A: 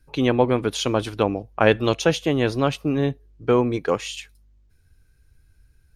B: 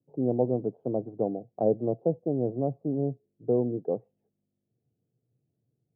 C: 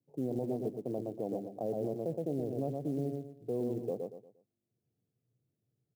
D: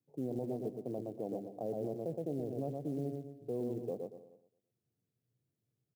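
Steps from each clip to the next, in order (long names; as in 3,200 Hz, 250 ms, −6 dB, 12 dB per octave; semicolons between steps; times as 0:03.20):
Chebyshev band-pass filter 120–720 Hz, order 4; level −6 dB
repeating echo 117 ms, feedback 32%, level −6 dB; brickwall limiter −20 dBFS, peak gain reduction 10 dB; floating-point word with a short mantissa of 4 bits; level −5.5 dB
single-tap delay 291 ms −20 dB; level −3 dB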